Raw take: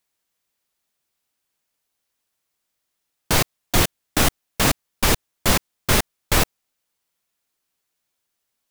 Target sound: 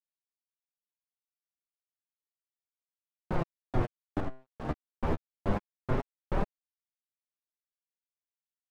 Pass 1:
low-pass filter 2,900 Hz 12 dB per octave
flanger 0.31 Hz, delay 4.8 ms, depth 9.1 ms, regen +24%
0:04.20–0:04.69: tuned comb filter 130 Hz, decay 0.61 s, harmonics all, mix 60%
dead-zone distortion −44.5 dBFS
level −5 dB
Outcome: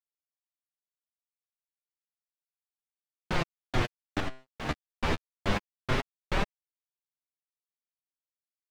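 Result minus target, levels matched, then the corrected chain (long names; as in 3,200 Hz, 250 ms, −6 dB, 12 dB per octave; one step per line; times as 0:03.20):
4,000 Hz band +14.5 dB
low-pass filter 960 Hz 12 dB per octave
flanger 0.31 Hz, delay 4.8 ms, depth 9.1 ms, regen +24%
0:04.20–0:04.69: tuned comb filter 130 Hz, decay 0.61 s, harmonics all, mix 60%
dead-zone distortion −44.5 dBFS
level −5 dB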